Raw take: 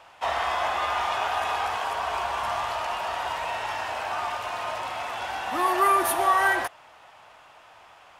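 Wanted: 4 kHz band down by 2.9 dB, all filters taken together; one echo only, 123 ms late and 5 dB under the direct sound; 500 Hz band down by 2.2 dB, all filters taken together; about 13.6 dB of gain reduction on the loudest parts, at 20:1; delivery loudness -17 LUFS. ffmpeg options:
-af "equalizer=f=500:t=o:g=-3.5,equalizer=f=4000:t=o:g=-4,acompressor=threshold=0.0282:ratio=20,aecho=1:1:123:0.562,volume=6.68"

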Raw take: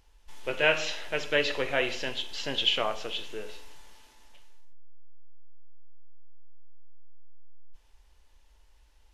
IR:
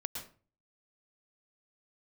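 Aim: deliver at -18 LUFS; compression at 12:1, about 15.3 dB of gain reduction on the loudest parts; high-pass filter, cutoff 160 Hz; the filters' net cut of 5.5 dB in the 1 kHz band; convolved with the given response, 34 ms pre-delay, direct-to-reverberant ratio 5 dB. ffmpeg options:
-filter_complex "[0:a]highpass=160,equalizer=f=1000:t=o:g=-8,acompressor=threshold=0.0158:ratio=12,asplit=2[s0][s1];[1:a]atrim=start_sample=2205,adelay=34[s2];[s1][s2]afir=irnorm=-1:irlink=0,volume=0.531[s3];[s0][s3]amix=inputs=2:normalize=0,volume=11.2"

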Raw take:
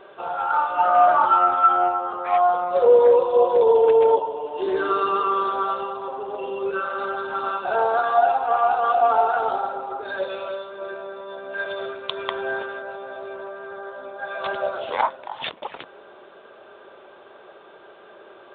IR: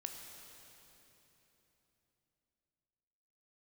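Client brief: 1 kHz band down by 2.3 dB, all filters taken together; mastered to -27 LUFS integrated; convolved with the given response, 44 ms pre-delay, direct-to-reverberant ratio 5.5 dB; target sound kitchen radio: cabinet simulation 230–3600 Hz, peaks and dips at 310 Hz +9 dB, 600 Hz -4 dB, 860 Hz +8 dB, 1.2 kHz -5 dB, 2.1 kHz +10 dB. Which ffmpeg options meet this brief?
-filter_complex "[0:a]equalizer=f=1000:t=o:g=-6.5,asplit=2[s0][s1];[1:a]atrim=start_sample=2205,adelay=44[s2];[s1][s2]afir=irnorm=-1:irlink=0,volume=0.708[s3];[s0][s3]amix=inputs=2:normalize=0,highpass=230,equalizer=f=310:t=q:w=4:g=9,equalizer=f=600:t=q:w=4:g=-4,equalizer=f=860:t=q:w=4:g=8,equalizer=f=1200:t=q:w=4:g=-5,equalizer=f=2100:t=q:w=4:g=10,lowpass=f=3600:w=0.5412,lowpass=f=3600:w=1.3066,volume=0.531"

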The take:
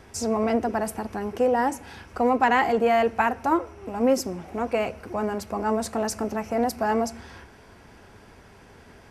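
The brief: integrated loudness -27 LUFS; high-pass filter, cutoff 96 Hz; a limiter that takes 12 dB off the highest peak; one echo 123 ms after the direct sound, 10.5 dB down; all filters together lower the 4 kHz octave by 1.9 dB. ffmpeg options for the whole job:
-af "highpass=96,equalizer=f=4000:t=o:g=-3,alimiter=limit=0.0841:level=0:latency=1,aecho=1:1:123:0.299,volume=1.58"

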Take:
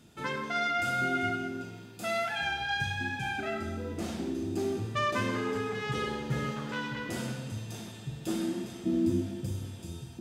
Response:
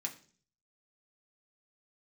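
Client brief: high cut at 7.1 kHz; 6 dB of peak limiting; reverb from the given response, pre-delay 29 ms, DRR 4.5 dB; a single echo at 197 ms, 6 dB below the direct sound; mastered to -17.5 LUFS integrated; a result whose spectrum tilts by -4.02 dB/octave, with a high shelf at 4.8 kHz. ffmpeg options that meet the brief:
-filter_complex "[0:a]lowpass=7100,highshelf=f=4800:g=-4.5,alimiter=limit=0.0668:level=0:latency=1,aecho=1:1:197:0.501,asplit=2[s0][s1];[1:a]atrim=start_sample=2205,adelay=29[s2];[s1][s2]afir=irnorm=-1:irlink=0,volume=0.631[s3];[s0][s3]amix=inputs=2:normalize=0,volume=5.31"

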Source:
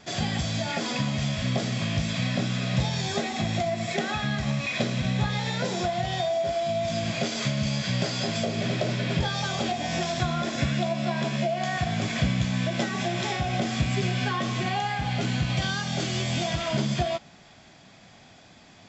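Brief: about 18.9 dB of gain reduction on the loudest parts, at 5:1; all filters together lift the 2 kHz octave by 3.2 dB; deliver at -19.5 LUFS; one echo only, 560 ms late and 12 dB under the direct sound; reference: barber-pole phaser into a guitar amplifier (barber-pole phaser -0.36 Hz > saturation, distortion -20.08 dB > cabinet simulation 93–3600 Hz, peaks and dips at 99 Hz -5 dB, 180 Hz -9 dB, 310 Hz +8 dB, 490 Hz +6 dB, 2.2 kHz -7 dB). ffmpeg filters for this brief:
-filter_complex "[0:a]equalizer=f=2000:t=o:g=7.5,acompressor=threshold=0.00794:ratio=5,aecho=1:1:560:0.251,asplit=2[s0][s1];[s1]afreqshift=-0.36[s2];[s0][s2]amix=inputs=2:normalize=1,asoftclip=threshold=0.0133,highpass=93,equalizer=f=99:t=q:w=4:g=-5,equalizer=f=180:t=q:w=4:g=-9,equalizer=f=310:t=q:w=4:g=8,equalizer=f=490:t=q:w=4:g=6,equalizer=f=2200:t=q:w=4:g=-7,lowpass=f=3600:w=0.5412,lowpass=f=3600:w=1.3066,volume=26.6"

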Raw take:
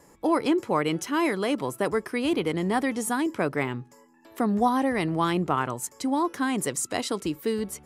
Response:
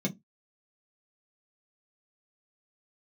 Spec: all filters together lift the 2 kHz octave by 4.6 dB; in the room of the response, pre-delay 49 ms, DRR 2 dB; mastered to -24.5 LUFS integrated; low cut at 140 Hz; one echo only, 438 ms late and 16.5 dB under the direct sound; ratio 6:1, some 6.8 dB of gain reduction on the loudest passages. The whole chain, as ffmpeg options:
-filter_complex "[0:a]highpass=140,equalizer=f=2000:t=o:g=5.5,acompressor=threshold=0.0562:ratio=6,aecho=1:1:438:0.15,asplit=2[s0][s1];[1:a]atrim=start_sample=2205,adelay=49[s2];[s1][s2]afir=irnorm=-1:irlink=0,volume=0.473[s3];[s0][s3]amix=inputs=2:normalize=0,volume=0.708"

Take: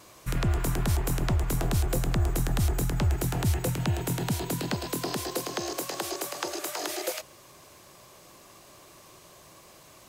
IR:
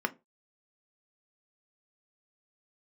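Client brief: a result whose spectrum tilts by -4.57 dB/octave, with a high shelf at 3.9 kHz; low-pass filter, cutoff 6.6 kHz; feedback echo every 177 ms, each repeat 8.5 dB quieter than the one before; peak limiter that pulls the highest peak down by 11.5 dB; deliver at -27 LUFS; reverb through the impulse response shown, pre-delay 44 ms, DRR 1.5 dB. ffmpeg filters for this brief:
-filter_complex "[0:a]lowpass=6600,highshelf=f=3900:g=6,alimiter=level_in=1.26:limit=0.0631:level=0:latency=1,volume=0.794,aecho=1:1:177|354|531|708:0.376|0.143|0.0543|0.0206,asplit=2[s0][s1];[1:a]atrim=start_sample=2205,adelay=44[s2];[s1][s2]afir=irnorm=-1:irlink=0,volume=0.355[s3];[s0][s3]amix=inputs=2:normalize=0,volume=2.11"

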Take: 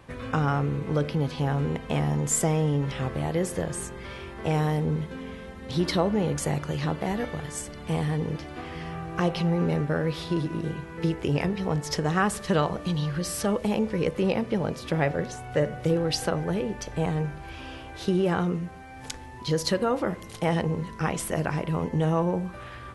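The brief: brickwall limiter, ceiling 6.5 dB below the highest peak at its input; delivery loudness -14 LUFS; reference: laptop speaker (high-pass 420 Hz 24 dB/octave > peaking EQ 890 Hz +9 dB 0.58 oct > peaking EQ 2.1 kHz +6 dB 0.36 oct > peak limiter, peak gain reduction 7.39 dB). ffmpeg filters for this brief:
-af "alimiter=limit=0.141:level=0:latency=1,highpass=f=420:w=0.5412,highpass=f=420:w=1.3066,equalizer=f=890:t=o:w=0.58:g=9,equalizer=f=2100:t=o:w=0.36:g=6,volume=8.41,alimiter=limit=0.841:level=0:latency=1"

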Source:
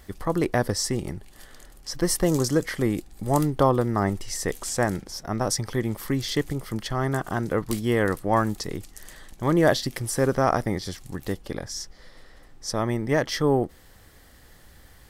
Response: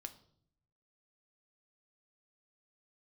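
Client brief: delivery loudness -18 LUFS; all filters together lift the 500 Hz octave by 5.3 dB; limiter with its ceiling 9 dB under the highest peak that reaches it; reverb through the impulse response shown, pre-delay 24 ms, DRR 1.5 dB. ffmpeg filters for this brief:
-filter_complex "[0:a]equalizer=f=500:t=o:g=6.5,alimiter=limit=0.237:level=0:latency=1,asplit=2[s0][s1];[1:a]atrim=start_sample=2205,adelay=24[s2];[s1][s2]afir=irnorm=-1:irlink=0,volume=1.41[s3];[s0][s3]amix=inputs=2:normalize=0,volume=1.78"

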